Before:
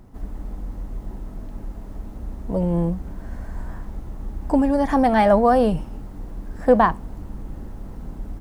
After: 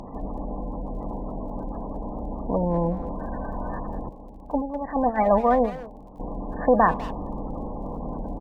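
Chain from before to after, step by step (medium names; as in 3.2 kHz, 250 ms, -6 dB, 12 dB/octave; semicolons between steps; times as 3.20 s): spectral levelling over time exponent 0.6; 4.09–6.20 s: gate -13 dBFS, range -12 dB; spectral gate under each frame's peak -20 dB strong; peaking EQ 5.1 kHz +13 dB 2.3 oct; crackle 25 per s -44 dBFS; speakerphone echo 200 ms, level -13 dB; trim -5.5 dB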